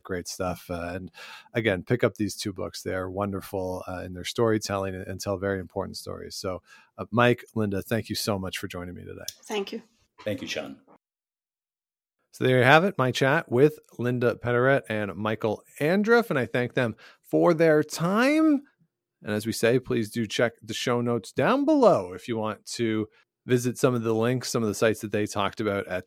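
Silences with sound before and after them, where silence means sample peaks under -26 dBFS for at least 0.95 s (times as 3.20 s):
10.61–12.41 s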